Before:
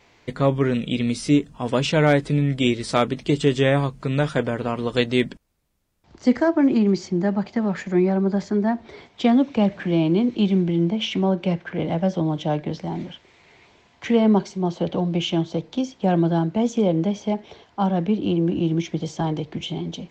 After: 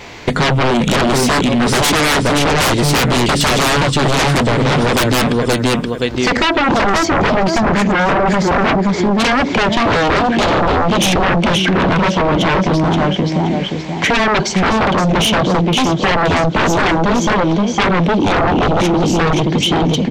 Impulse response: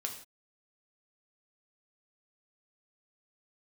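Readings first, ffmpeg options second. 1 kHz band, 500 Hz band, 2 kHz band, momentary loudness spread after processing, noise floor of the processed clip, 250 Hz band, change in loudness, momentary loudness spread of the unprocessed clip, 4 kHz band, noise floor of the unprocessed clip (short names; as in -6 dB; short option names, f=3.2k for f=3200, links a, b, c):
+15.0 dB, +7.5 dB, +16.0 dB, 2 LU, -21 dBFS, +5.5 dB, +8.5 dB, 9 LU, +14.5 dB, -57 dBFS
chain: -af "aecho=1:1:525|1050|1575:0.562|0.135|0.0324,aeval=exprs='0.631*sin(PI/2*8.91*val(0)/0.631)':c=same,acompressor=threshold=-12dB:ratio=6"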